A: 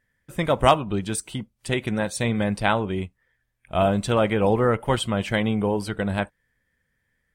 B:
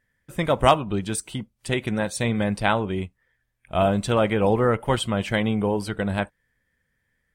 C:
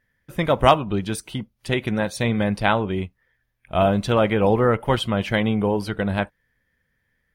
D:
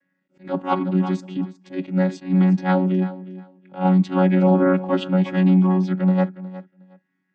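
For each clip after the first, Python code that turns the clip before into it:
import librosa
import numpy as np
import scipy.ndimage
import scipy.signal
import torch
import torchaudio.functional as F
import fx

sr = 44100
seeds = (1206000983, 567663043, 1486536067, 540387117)

y1 = x
y2 = fx.peak_eq(y1, sr, hz=8000.0, db=-11.5, octaves=0.38)
y2 = F.gain(torch.from_numpy(y2), 2.0).numpy()
y3 = fx.chord_vocoder(y2, sr, chord='bare fifth', root=54)
y3 = fx.echo_feedback(y3, sr, ms=362, feedback_pct=18, wet_db=-16)
y3 = fx.attack_slew(y3, sr, db_per_s=210.0)
y3 = F.gain(torch.from_numpy(y3), 3.5).numpy()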